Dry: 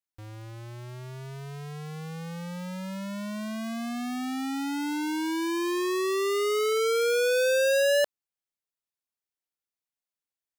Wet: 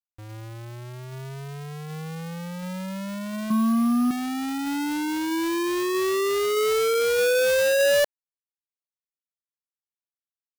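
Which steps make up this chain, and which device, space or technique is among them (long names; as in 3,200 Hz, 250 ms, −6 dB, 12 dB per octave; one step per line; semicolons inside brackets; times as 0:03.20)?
0:03.50–0:04.11: drawn EQ curve 120 Hz 0 dB, 180 Hz +13 dB, 710 Hz −5 dB, 1,100 Hz +13 dB, 1,800 Hz −10 dB, 8,800 Hz −28 dB
early companding sampler (sample-rate reduction 11,000 Hz, jitter 0%; log-companded quantiser 6 bits)
level +3 dB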